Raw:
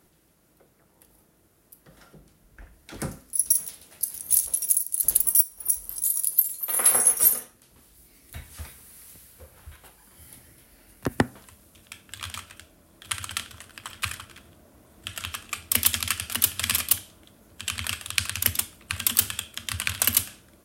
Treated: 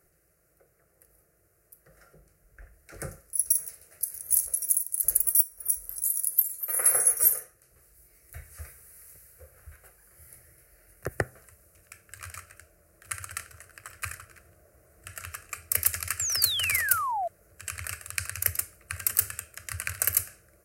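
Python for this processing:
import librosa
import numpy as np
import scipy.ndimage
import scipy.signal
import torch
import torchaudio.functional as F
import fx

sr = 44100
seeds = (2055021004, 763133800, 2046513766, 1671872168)

y = fx.fixed_phaser(x, sr, hz=930.0, stages=6)
y = fx.spec_paint(y, sr, seeds[0], shape='fall', start_s=16.19, length_s=1.09, low_hz=650.0, high_hz=7800.0, level_db=-27.0)
y = y * librosa.db_to_amplitude(-2.0)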